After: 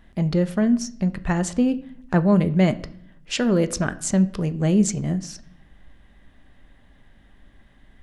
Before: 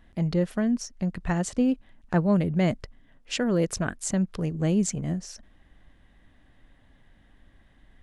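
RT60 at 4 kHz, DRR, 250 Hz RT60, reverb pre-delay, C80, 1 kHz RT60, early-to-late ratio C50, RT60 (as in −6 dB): 0.50 s, 11.0 dB, 0.90 s, 5 ms, 20.5 dB, 0.55 s, 18.0 dB, 0.60 s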